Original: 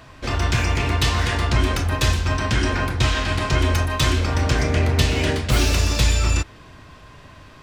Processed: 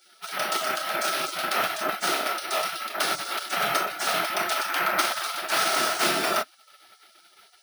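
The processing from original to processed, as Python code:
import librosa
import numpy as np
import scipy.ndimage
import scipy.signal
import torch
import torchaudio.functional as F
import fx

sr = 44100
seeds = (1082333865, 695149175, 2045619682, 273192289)

y = scipy.signal.sosfilt(scipy.signal.butter(2, 6700.0, 'lowpass', fs=sr, output='sos'), x)
y = fx.spec_gate(y, sr, threshold_db=-25, keep='weak')
y = scipy.signal.sosfilt(scipy.signal.butter(2, 65.0, 'highpass', fs=sr, output='sos'), y)
y = fx.peak_eq(y, sr, hz=410.0, db=-8.0, octaves=1.1)
y = fx.small_body(y, sr, hz=(370.0, 630.0, 1300.0), ring_ms=30, db=17)
y = np.repeat(scipy.signal.resample_poly(y, 1, 3), 3)[:len(y)]
y = y * 10.0 ** (3.0 / 20.0)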